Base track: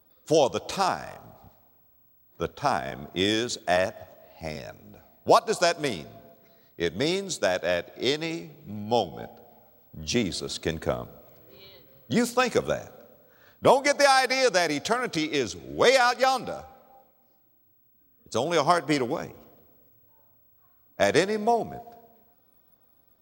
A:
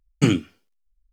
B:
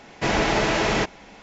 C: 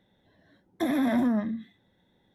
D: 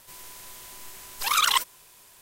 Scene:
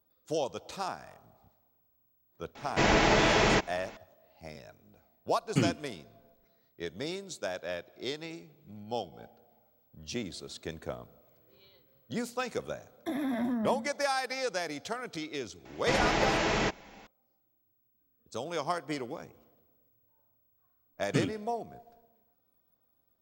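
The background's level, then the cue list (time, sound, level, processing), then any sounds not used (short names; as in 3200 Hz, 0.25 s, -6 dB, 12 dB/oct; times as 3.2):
base track -11 dB
2.55 add B -2.5 dB
5.34 add A -9.5 dB
12.26 add C -7 dB
15.65 add B -6.5 dB
20.92 add A -13 dB
not used: D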